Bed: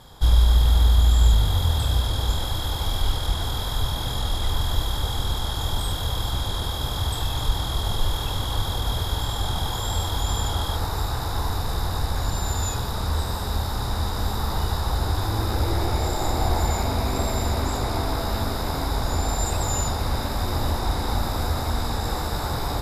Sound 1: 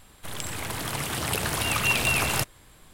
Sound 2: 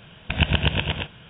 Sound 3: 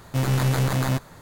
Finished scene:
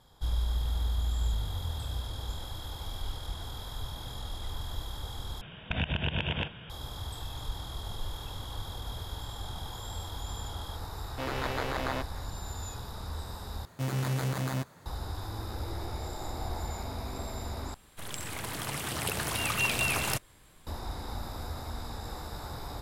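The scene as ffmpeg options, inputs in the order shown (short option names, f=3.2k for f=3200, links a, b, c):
-filter_complex "[3:a]asplit=2[a][b];[0:a]volume=-13.5dB[c];[2:a]acompressor=threshold=-26dB:ratio=6:attack=3.2:release=140:knee=1:detection=peak[d];[a]acrossover=split=290 4600:gain=0.0794 1 0.112[e][f][g];[e][f][g]amix=inputs=3:normalize=0[h];[b]highpass=80[i];[c]asplit=4[j][k][l][m];[j]atrim=end=5.414[n];[d]atrim=end=1.29[o];[k]atrim=start=6.696:end=13.654[p];[i]atrim=end=1.21,asetpts=PTS-STARTPTS,volume=-8.5dB[q];[l]atrim=start=14.856:end=17.744[r];[1:a]atrim=end=2.93,asetpts=PTS-STARTPTS,volume=-5dB[s];[m]atrim=start=20.666[t];[h]atrim=end=1.21,asetpts=PTS-STARTPTS,volume=-3.5dB,afade=t=in:d=0.004:c=hsin,afade=t=out:st=1.206:d=0.004:c=hsin,adelay=11040[u];[n][o]acrossfade=d=0.004:c1=hsin:c2=hsin[v];[v][p]acrossfade=d=0.004:c1=hsin:c2=hsin[w];[w][q]acrossfade=d=0.004:c1=hsin:c2=hsin[x];[x][r]acrossfade=d=0.004:c1=hsin:c2=hsin[y];[y][s]acrossfade=d=0.004:c1=hsin:c2=hsin[z];[z][t]acrossfade=d=0.004:c1=hsin:c2=hsin[aa];[aa][u]amix=inputs=2:normalize=0"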